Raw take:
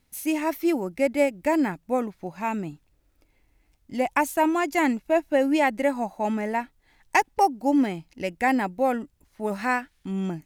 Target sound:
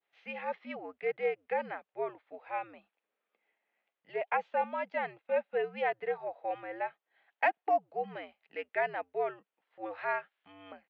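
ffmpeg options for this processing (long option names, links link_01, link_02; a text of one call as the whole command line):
ffmpeg -i in.wav -af "highpass=frequency=540:width_type=q:width=0.5412,highpass=frequency=540:width_type=q:width=1.307,lowpass=frequency=3400:width_type=q:width=0.5176,lowpass=frequency=3400:width_type=q:width=0.7071,lowpass=frequency=3400:width_type=q:width=1.932,afreqshift=-93,atempo=0.96,adynamicequalizer=threshold=0.0112:dfrequency=2100:dqfactor=0.79:tfrequency=2100:tqfactor=0.79:attack=5:release=100:ratio=0.375:range=2.5:mode=cutabove:tftype=bell,volume=-7dB" out.wav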